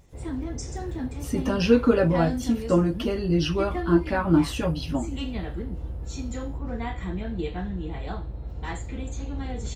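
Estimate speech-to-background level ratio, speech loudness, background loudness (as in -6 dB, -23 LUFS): 9.5 dB, -24.0 LUFS, -33.5 LUFS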